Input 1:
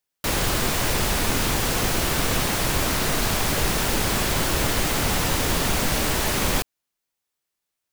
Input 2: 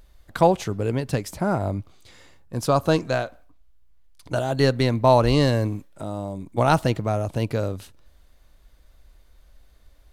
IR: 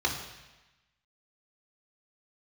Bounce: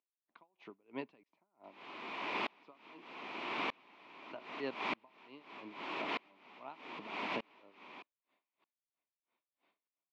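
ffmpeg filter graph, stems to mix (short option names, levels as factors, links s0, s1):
-filter_complex "[0:a]adelay=1400,volume=0.355[s0];[1:a]acompressor=threshold=0.1:ratio=6,aeval=exprs='val(0)*pow(10,-32*(0.5-0.5*cos(2*PI*3*n/s))/20)':c=same,volume=0.794,asplit=2[s1][s2];[s2]apad=whole_len=411012[s3];[s0][s3]sidechaincompress=threshold=0.01:ratio=8:attack=45:release=146[s4];[s4][s1]amix=inputs=2:normalize=0,highpass=f=250:w=0.5412,highpass=f=250:w=1.3066,equalizer=f=510:t=q:w=4:g=-6,equalizer=f=1000:t=q:w=4:g=8,equalizer=f=1600:t=q:w=4:g=-7,equalizer=f=2400:t=q:w=4:g=8,lowpass=f=3300:w=0.5412,lowpass=f=3300:w=1.3066,aeval=exprs='val(0)*pow(10,-33*if(lt(mod(-0.81*n/s,1),2*abs(-0.81)/1000),1-mod(-0.81*n/s,1)/(2*abs(-0.81)/1000),(mod(-0.81*n/s,1)-2*abs(-0.81)/1000)/(1-2*abs(-0.81)/1000))/20)':c=same"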